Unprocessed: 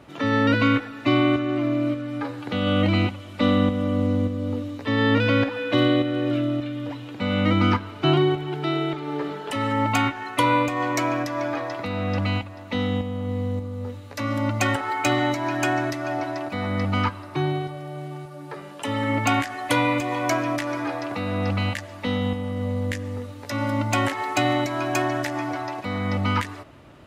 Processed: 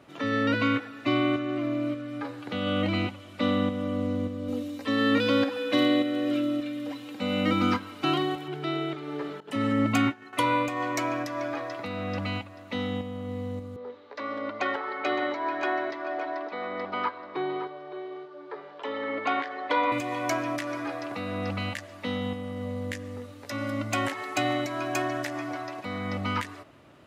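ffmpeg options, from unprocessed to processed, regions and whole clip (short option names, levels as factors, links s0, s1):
-filter_complex "[0:a]asettb=1/sr,asplit=3[s0][s1][s2];[s0]atrim=end=4.484[s3];[s1]atrim=start=4.48:end=8.48,asetpts=PTS-STARTPTS,afade=t=in:d=0.004:c=qsin,afade=t=out:st=3.996:d=0.004:c=qsin,aemphasis=mode=production:type=cd,aecho=1:1:3.8:0.6,atrim=end_sample=176400[s4];[s2]atrim=start=8.476[s5];[s3][s4]acrossfade=d=0.004:c1=hsin:c2=qsin[s6];[s6][s5]acrossfade=d=0.004:c1=qsin:c2=hsin,asettb=1/sr,asplit=3[s7][s8][s9];[s7]atrim=end=9.404[s10];[s8]atrim=start=9.4:end=10.33,asetpts=PTS-STARTPTS,afade=t=in:d=0.004:c=qsin,afade=t=out:st=0.926:d=0.004:c=qsin,agate=range=0.0224:threshold=0.0501:ratio=3:release=100:detection=peak,equalizer=f=190:t=o:w=1.5:g=11[s11];[s9]atrim=start=10.326[s12];[s10][s11]acrossfade=d=0.004:c1=hsin:c2=qsin[s13];[s13][s12]acrossfade=d=0.004:c1=qsin:c2=hsin,asettb=1/sr,asplit=3[s14][s15][s16];[s14]atrim=end=13.764[s17];[s15]atrim=start=13.76:end=19.92,asetpts=PTS-STARTPTS,afade=t=in:d=0.004:c=qsin,afade=t=out:st=6.156:d=0.004:c=qsin,highpass=380,equalizer=f=420:t=q:w=4:g=10,equalizer=f=970:t=q:w=4:g=5,equalizer=f=2700:t=q:w=4:g=-7,lowpass=f=4000:w=0.5412,lowpass=f=4000:w=1.3066,aecho=1:1:564:0.237,atrim=end_sample=271656[s18];[s16]atrim=start=19.916[s19];[s17][s18]acrossfade=d=0.004:c1=hsin:c2=qsin[s20];[s20][s19]acrossfade=d=0.004:c1=qsin:c2=hsin,highpass=f=150:p=1,bandreject=f=880:w=24,volume=0.596"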